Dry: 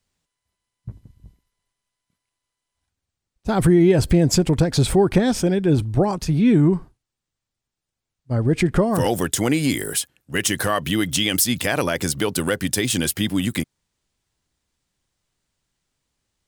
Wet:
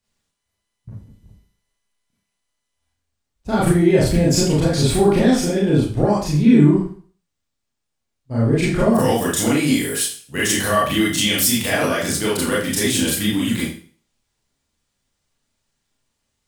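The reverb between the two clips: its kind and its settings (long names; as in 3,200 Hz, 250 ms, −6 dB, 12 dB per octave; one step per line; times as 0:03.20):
four-comb reverb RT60 0.43 s, combs from 27 ms, DRR −7 dB
level −5 dB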